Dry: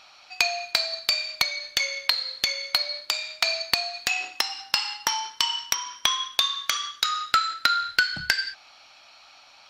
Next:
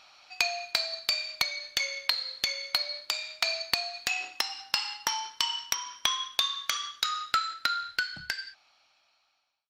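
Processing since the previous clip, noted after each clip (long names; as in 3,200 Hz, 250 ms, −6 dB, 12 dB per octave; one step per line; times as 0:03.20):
fade-out on the ending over 2.67 s
level −4.5 dB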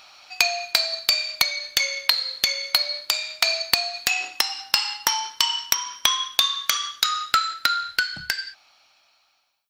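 high-shelf EQ 10,000 Hz +10.5 dB
level +6.5 dB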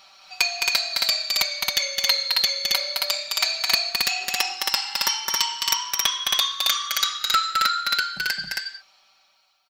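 comb filter 5.2 ms, depth 91%
on a send: loudspeakers that aren't time-aligned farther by 73 metres −4 dB, 93 metres −2 dB
on the sum: level −5 dB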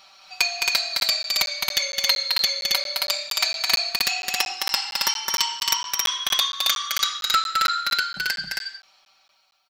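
regular buffer underruns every 0.23 s, samples 512, zero, from 0:01.00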